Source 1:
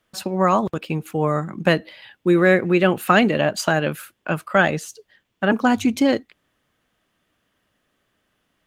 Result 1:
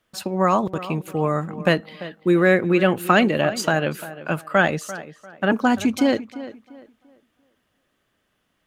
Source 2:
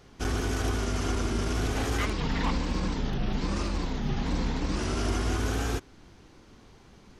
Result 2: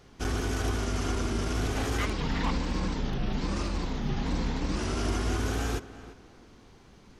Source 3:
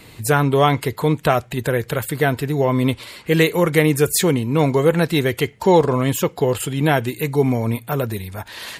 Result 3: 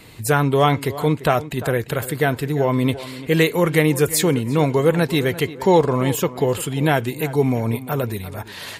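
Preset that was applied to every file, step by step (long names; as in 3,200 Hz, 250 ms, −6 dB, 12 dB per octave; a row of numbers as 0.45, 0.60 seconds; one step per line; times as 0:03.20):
tape delay 344 ms, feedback 32%, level −14 dB, low-pass 2,700 Hz
level −1 dB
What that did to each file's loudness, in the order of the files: −1.0, −1.0, −1.0 LU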